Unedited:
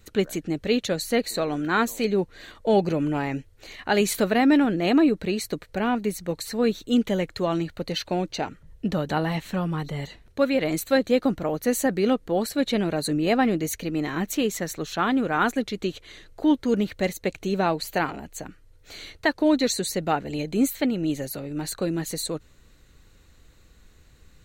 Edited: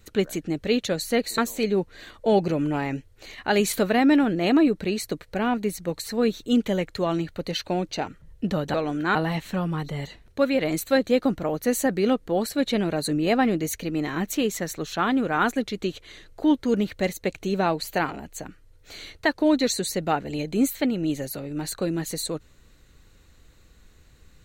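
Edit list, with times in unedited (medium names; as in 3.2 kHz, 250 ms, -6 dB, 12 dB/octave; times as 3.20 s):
1.38–1.79 s: move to 9.15 s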